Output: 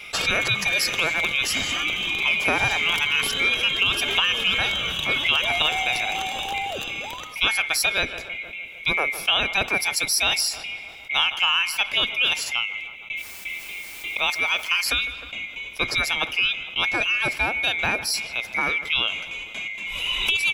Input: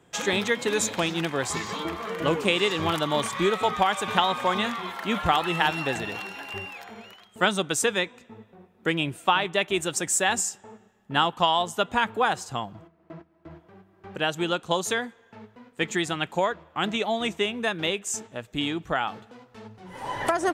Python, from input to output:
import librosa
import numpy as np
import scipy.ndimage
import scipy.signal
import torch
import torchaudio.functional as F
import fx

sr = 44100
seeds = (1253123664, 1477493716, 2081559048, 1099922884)

y = fx.band_swap(x, sr, width_hz=2000)
y = fx.quant_dither(y, sr, seeds[0], bits=10, dither='triangular', at=(13.16, 14.89), fade=0.02)
y = fx.echo_filtered(y, sr, ms=154, feedback_pct=53, hz=2100.0, wet_db=-22.0)
y = fx.env_flatten(y, sr, amount_pct=50)
y = y * 10.0 ** (-1.0 / 20.0)